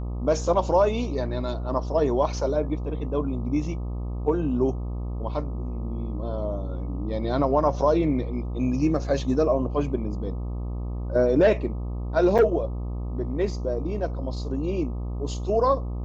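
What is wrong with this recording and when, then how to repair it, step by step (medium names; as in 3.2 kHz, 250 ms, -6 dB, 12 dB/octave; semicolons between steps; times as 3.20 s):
buzz 60 Hz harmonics 21 -30 dBFS
12.38–12.39 s: dropout 7.1 ms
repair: de-hum 60 Hz, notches 21; interpolate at 12.38 s, 7.1 ms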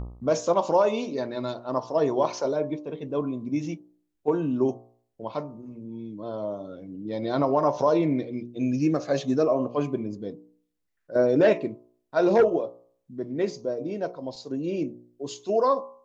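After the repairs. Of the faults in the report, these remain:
nothing left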